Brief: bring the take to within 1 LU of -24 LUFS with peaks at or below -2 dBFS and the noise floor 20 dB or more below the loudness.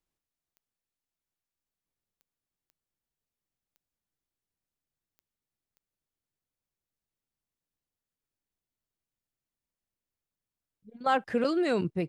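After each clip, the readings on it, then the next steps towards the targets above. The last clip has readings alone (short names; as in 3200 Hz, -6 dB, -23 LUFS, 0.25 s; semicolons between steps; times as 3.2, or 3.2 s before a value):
clicks 6; loudness -28.5 LUFS; peak -15.0 dBFS; loudness target -24.0 LUFS
-> de-click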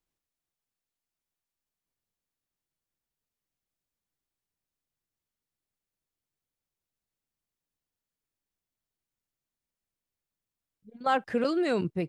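clicks 0; loudness -28.5 LUFS; peak -15.0 dBFS; loudness target -24.0 LUFS
-> gain +4.5 dB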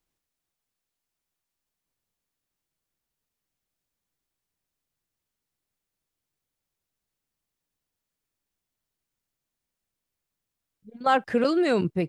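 loudness -24.0 LUFS; peak -10.5 dBFS; noise floor -86 dBFS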